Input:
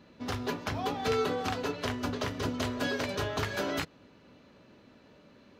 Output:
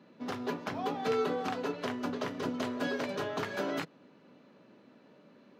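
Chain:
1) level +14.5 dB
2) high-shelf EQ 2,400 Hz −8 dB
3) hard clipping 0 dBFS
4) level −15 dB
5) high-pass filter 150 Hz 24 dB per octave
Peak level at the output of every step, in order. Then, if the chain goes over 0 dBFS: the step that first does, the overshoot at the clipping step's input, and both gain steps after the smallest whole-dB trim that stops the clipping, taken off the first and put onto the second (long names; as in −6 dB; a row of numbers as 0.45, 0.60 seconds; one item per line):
−3.5, −5.5, −5.5, −20.5, −19.5 dBFS
no step passes full scale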